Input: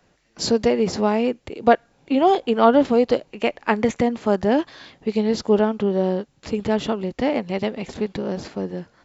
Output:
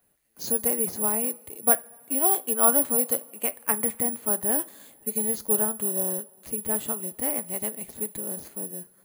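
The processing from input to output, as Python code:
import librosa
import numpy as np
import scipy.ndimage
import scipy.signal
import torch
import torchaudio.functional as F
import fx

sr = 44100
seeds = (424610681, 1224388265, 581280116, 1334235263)

y = fx.dynamic_eq(x, sr, hz=1300.0, q=0.91, threshold_db=-31.0, ratio=4.0, max_db=5)
y = (np.kron(scipy.signal.resample_poly(y, 1, 4), np.eye(4)[0]) * 4)[:len(y)]
y = fx.rev_double_slope(y, sr, seeds[0], early_s=0.3, late_s=3.0, knee_db=-20, drr_db=13.5)
y = y * 10.0 ** (-13.5 / 20.0)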